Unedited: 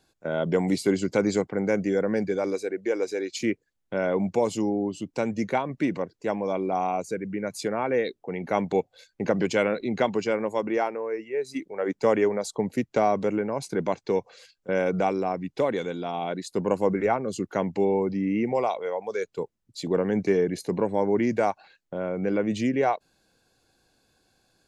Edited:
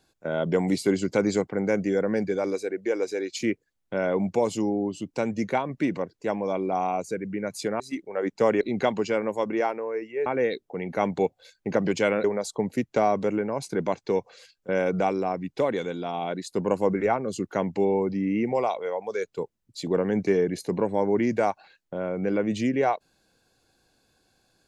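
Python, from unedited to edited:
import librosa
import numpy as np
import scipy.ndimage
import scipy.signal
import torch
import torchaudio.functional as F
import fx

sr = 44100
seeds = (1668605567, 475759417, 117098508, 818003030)

y = fx.edit(x, sr, fx.swap(start_s=7.8, length_s=1.98, other_s=11.43, other_length_s=0.81), tone=tone)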